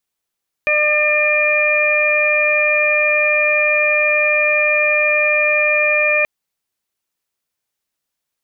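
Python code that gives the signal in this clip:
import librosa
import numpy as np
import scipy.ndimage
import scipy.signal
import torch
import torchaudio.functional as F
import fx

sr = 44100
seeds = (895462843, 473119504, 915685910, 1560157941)

y = fx.additive_steady(sr, length_s=5.58, hz=601.0, level_db=-18, upper_db=(-9.0, -4.0, 4.0))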